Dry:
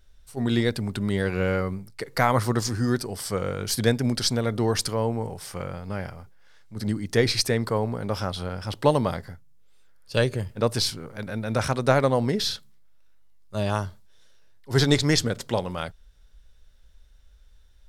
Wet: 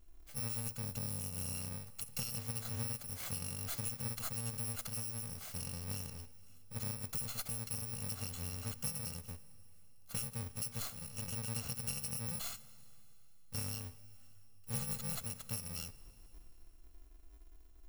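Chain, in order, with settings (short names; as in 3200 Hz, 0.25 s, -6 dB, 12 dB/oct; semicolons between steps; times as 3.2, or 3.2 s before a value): FFT order left unsorted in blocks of 128 samples; 0.84–1.55 bell 1900 Hz -4.5 dB 1.8 oct; compressor 6:1, threshold -30 dBFS, peak gain reduction 15.5 dB; low shelf 180 Hz +5 dB; plate-style reverb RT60 3.1 s, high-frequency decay 1×, DRR 16.5 dB; gain -8 dB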